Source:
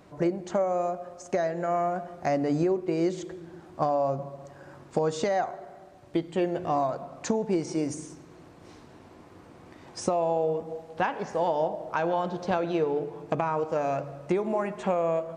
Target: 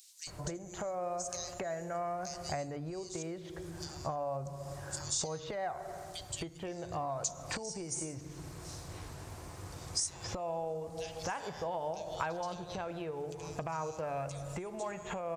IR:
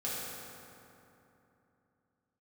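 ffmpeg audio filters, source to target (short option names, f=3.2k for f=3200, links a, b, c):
-filter_complex "[0:a]bass=f=250:g=11,treble=f=4k:g=13,acrossover=split=3400[a][b];[a]adelay=270[c];[c][b]amix=inputs=2:normalize=0,acompressor=threshold=-35dB:ratio=6,equalizer=f=230:w=1:g=-14.5,volume=4dB"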